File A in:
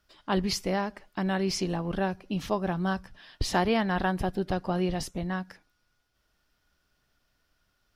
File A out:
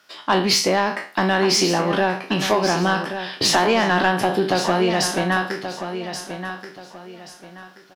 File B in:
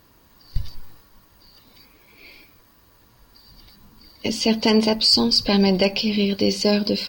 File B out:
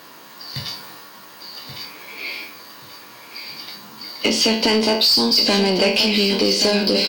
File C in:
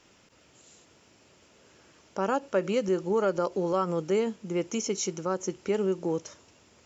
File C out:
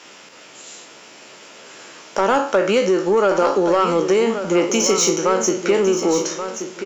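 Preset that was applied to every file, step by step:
spectral trails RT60 0.36 s; HPF 130 Hz 24 dB/oct; dynamic EQ 290 Hz, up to +5 dB, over -34 dBFS, Q 1.3; compressor 3:1, threshold -26 dBFS; overdrive pedal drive 17 dB, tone 6400 Hz, clips at -11.5 dBFS; feedback echo 1.13 s, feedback 29%, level -9.5 dB; normalise peaks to -6 dBFS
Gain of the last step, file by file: +6.5, +5.0, +7.0 dB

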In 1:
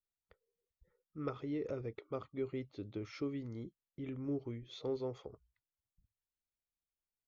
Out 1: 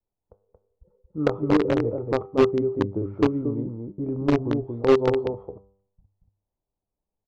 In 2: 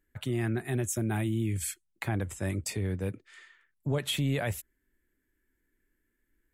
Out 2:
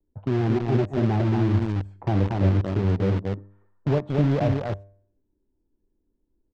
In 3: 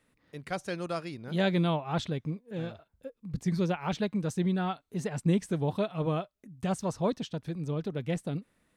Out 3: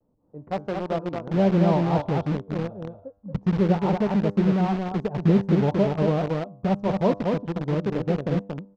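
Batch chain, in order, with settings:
block floating point 5-bit; EQ curve 120 Hz 0 dB, 920 Hz +1 dB, 2000 Hz -25 dB; low-pass opened by the level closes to 930 Hz, open at -29 dBFS; resonator 99 Hz, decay 0.58 s, harmonics all, mix 60%; on a send: echo 0.23 s -4 dB; on the sum: vibrato 0.31 Hz 17 cents; in parallel at -4.5 dB: requantised 6-bit, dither none; on the sum: air absorption 190 m; match loudness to -24 LUFS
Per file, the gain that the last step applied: +21.0, +10.0, +9.5 dB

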